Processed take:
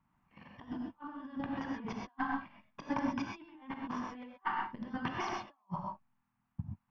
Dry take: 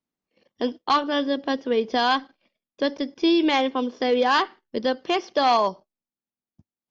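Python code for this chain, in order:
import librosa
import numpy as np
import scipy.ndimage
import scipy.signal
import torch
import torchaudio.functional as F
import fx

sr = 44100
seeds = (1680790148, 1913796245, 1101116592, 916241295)

y = fx.curve_eq(x, sr, hz=(160.0, 500.0, 940.0, 2800.0, 4000.0), db=(0, -26, 1, -14, -27))
y = fx.over_compress(y, sr, threshold_db=-48.0, ratio=-0.5)
y = fx.rev_gated(y, sr, seeds[0], gate_ms=150, shape='rising', drr_db=0.0)
y = F.gain(torch.from_numpy(y), 3.5).numpy()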